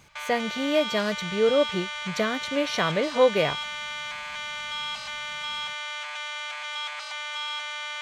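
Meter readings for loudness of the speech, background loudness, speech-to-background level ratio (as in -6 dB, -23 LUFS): -25.5 LUFS, -31.5 LUFS, 6.0 dB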